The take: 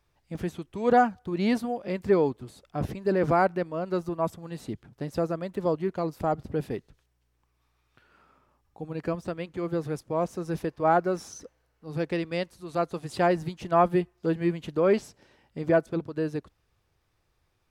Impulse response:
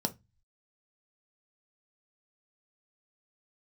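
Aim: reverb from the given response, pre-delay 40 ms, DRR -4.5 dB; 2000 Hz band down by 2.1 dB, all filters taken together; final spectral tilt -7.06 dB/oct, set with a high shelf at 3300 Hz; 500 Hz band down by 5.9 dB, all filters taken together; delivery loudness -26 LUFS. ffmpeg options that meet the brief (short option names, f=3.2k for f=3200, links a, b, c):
-filter_complex "[0:a]equalizer=f=500:t=o:g=-8,equalizer=f=2k:t=o:g=-4.5,highshelf=f=3.3k:g=7.5,asplit=2[a][b];[1:a]atrim=start_sample=2205,adelay=40[c];[b][c]afir=irnorm=-1:irlink=0,volume=0.5dB[d];[a][d]amix=inputs=2:normalize=0,volume=-6dB"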